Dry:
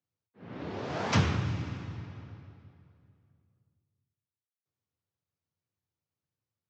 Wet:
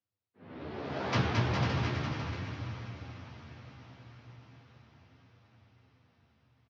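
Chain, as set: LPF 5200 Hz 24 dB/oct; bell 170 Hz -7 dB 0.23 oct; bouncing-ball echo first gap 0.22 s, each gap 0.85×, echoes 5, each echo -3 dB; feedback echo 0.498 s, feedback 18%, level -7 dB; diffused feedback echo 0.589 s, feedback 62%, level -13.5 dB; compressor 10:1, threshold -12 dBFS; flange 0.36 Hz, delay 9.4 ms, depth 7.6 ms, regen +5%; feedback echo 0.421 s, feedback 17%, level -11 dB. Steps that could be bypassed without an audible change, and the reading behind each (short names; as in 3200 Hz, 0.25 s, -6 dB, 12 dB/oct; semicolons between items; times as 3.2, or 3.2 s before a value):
compressor, threshold -12 dBFS: input peak -13.5 dBFS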